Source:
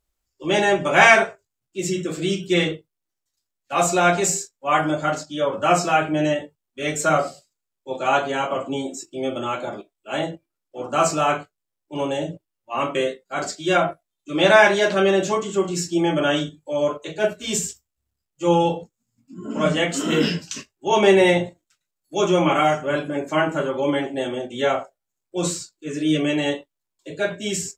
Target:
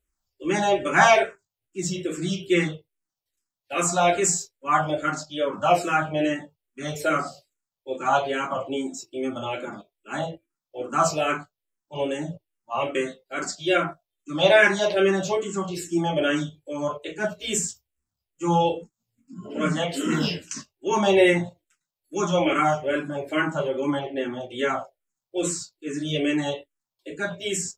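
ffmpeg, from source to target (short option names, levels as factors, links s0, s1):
-filter_complex "[0:a]asettb=1/sr,asplit=3[s0][s1][s2];[s0]atrim=end=23.994[s3];[s1]atrim=start=23.99:end=24.41,asetpts=PTS-STARTPTS,afade=t=in:d=0.004:c=qsin,afade=t=out:st=0.416:d=0.004:c=qsin,lowpass=f=5300:w=0.5412,lowpass=f=5300:w=1.3066[s4];[s2]atrim=start=24.406[s5];[s3][s4]acrossfade=d=0.004:c1=hsin:c2=qsin[s6];[s6][s5]acrossfade=d=0.004:c1=qsin:c2=hsin,asplit=2[s7][s8];[s8]afreqshift=-2.4[s9];[s7][s9]amix=inputs=2:normalize=1"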